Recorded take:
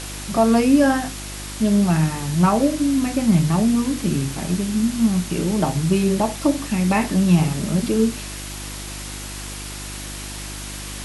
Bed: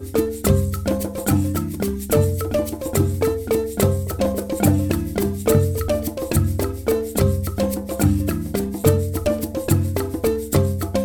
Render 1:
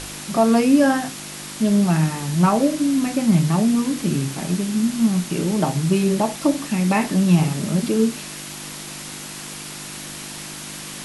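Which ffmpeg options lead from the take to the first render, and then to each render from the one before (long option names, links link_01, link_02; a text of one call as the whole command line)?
ffmpeg -i in.wav -af "bandreject=frequency=50:width_type=h:width=4,bandreject=frequency=100:width_type=h:width=4" out.wav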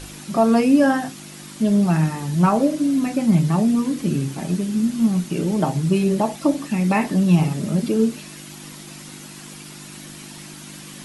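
ffmpeg -i in.wav -af "afftdn=noise_reduction=8:noise_floor=-34" out.wav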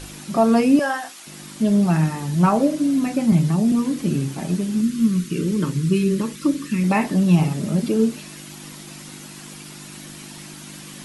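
ffmpeg -i in.wav -filter_complex "[0:a]asettb=1/sr,asplit=3[link_01][link_02][link_03];[link_01]atrim=end=0.794[link_04];[link_02]atrim=start=0.79:end=1.27,asetpts=PTS-STARTPTS,afade=type=in:duration=0.004:curve=qsin,afade=type=out:start_time=0.476:duration=0.004:curve=qsin,highpass=690[link_05];[link_03]atrim=start=1.266[link_06];[link_04][link_05]acrossfade=duration=0.004:curve1=hsin:curve2=qsin[link_07];[link_07][link_06]acrossfade=duration=0.004:curve1=qsin:curve2=hsin,asettb=1/sr,asplit=3[link_08][link_09][link_10];[link_08]atrim=end=3.324[link_11];[link_09]atrim=start=3.32:end=3.72,asetpts=PTS-STARTPTS,afade=type=in:duration=0.004:curve=qsin,afade=type=out:start_time=0.396:duration=0.004:curve=qsin,acrossover=split=430|3000[link_12][link_13][link_14];[link_13]acompressor=threshold=-31dB:ratio=6:attack=3.2:release=140:knee=2.83:detection=peak[link_15];[link_12][link_15][link_14]amix=inputs=3:normalize=0[link_16];[link_10]atrim=start=3.716[link_17];[link_11][link_16]acrossfade=duration=0.004:curve1=hsin:curve2=qsin[link_18];[link_18][link_17]acrossfade=duration=0.004:curve1=qsin:curve2=hsin,asettb=1/sr,asplit=3[link_19][link_20][link_21];[link_19]atrim=end=4.814[link_22];[link_20]atrim=start=4.81:end=6.84,asetpts=PTS-STARTPTS,afade=type=in:duration=0.004:curve=qsin,afade=type=out:start_time=2.026:duration=0.004:curve=qsin,asuperstop=centerf=730:order=4:qfactor=1.1[link_23];[link_21]atrim=start=6.836[link_24];[link_22][link_23]acrossfade=duration=0.004:curve1=hsin:curve2=qsin[link_25];[link_25][link_24]acrossfade=duration=0.004:curve1=qsin:curve2=hsin" out.wav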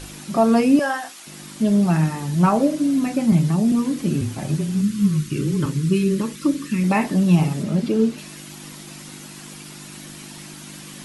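ffmpeg -i in.wav -filter_complex "[0:a]asettb=1/sr,asplit=3[link_01][link_02][link_03];[link_01]atrim=end=4.214[link_04];[link_02]atrim=start=4.21:end=5.66,asetpts=PTS-STARTPTS,afade=type=in:duration=0.004:curve=qsin,afade=type=out:start_time=1.446:duration=0.004:curve=qsin,afreqshift=-27[link_05];[link_03]atrim=start=5.656[link_06];[link_04][link_05]acrossfade=duration=0.004:curve1=hsin:curve2=qsin[link_07];[link_07][link_06]acrossfade=duration=0.004:curve1=qsin:curve2=hsin,asettb=1/sr,asplit=3[link_08][link_09][link_10];[link_08]atrim=end=7.634[link_11];[link_09]atrim=start=7.63:end=8.18,asetpts=PTS-STARTPTS,afade=type=in:duration=0.004:curve=qsin,afade=type=out:start_time=0.546:duration=0.004:curve=qsin,acrossover=split=5800[link_12][link_13];[link_13]acompressor=threshold=-49dB:ratio=4:attack=1:release=60[link_14];[link_12][link_14]amix=inputs=2:normalize=0[link_15];[link_10]atrim=start=8.176[link_16];[link_11][link_15]acrossfade=duration=0.004:curve1=hsin:curve2=qsin[link_17];[link_17][link_16]acrossfade=duration=0.004:curve1=qsin:curve2=hsin" out.wav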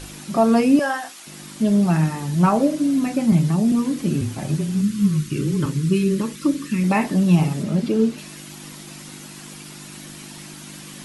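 ffmpeg -i in.wav -af anull out.wav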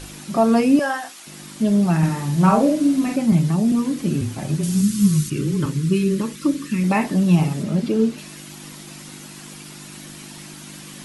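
ffmpeg -i in.wav -filter_complex "[0:a]asettb=1/sr,asplit=3[link_01][link_02][link_03];[link_01]atrim=end=1.984[link_04];[link_02]atrim=start=1.98:end=3.16,asetpts=PTS-STARTPTS,afade=type=in:duration=0.004:curve=qsin,afade=type=out:start_time=1.176:duration=0.004:curve=qsin,asplit=2[link_05][link_06];[link_06]adelay=49,volume=-3.5dB[link_07];[link_05][link_07]amix=inputs=2:normalize=0,atrim=end_sample=52038[link_08];[link_03]atrim=start=3.156[link_09];[link_04][link_08]acrossfade=duration=0.004:curve1=hsin:curve2=qsin[link_10];[link_10][link_09]acrossfade=duration=0.004:curve1=qsin:curve2=hsin,asettb=1/sr,asplit=3[link_11][link_12][link_13];[link_11]atrim=end=4.634[link_14];[link_12]atrim=start=4.63:end=5.3,asetpts=PTS-STARTPTS,afade=type=in:duration=0.004:curve=qsin,afade=type=out:start_time=0.666:duration=0.004:curve=qsin,bass=frequency=250:gain=3,treble=frequency=4000:gain=11[link_15];[link_13]atrim=start=5.296[link_16];[link_14][link_15]acrossfade=duration=0.004:curve1=hsin:curve2=qsin[link_17];[link_17][link_16]acrossfade=duration=0.004:curve1=qsin:curve2=hsin" out.wav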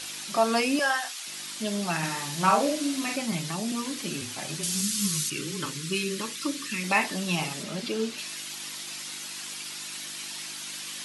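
ffmpeg -i in.wav -af "highpass=frequency=1100:poles=1,equalizer=frequency=4100:width=0.64:gain=6" out.wav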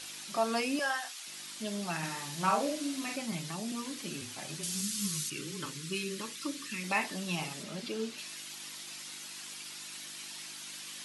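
ffmpeg -i in.wav -af "volume=-7dB" out.wav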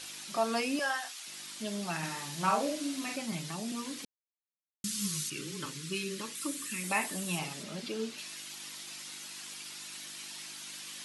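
ffmpeg -i in.wav -filter_complex "[0:a]asettb=1/sr,asplit=3[link_01][link_02][link_03];[link_01]atrim=end=6.354[link_04];[link_02]atrim=start=6.35:end=7.39,asetpts=PTS-STARTPTS,afade=type=in:duration=0.004:curve=qsin,afade=type=out:start_time=1.036:duration=0.004:curve=qsin,highshelf=frequency=6800:width_type=q:width=1.5:gain=7[link_05];[link_03]atrim=start=7.386[link_06];[link_04][link_05]acrossfade=duration=0.004:curve1=hsin:curve2=qsin[link_07];[link_07][link_06]acrossfade=duration=0.004:curve1=qsin:curve2=hsin,asplit=3[link_08][link_09][link_10];[link_08]atrim=end=4.05,asetpts=PTS-STARTPTS,afade=type=out:start_time=4.046:duration=0.004:curve=hsin[link_11];[link_09]atrim=start=4.05:end=4.84,asetpts=PTS-STARTPTS,volume=0[link_12];[link_10]atrim=start=4.84,asetpts=PTS-STARTPTS,afade=type=in:duration=0.004:curve=hsin[link_13];[link_11][link_12][link_13]concat=n=3:v=0:a=1" out.wav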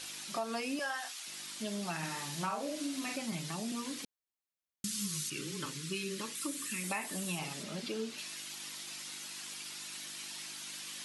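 ffmpeg -i in.wav -af "acompressor=threshold=-33dB:ratio=6" out.wav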